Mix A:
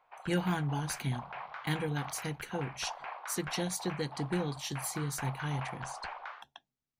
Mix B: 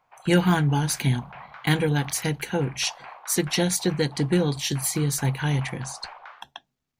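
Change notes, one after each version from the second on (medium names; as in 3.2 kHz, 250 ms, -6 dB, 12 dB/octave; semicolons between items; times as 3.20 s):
speech +11.5 dB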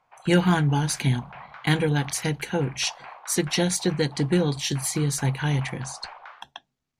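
speech: add low-pass 11 kHz 12 dB/octave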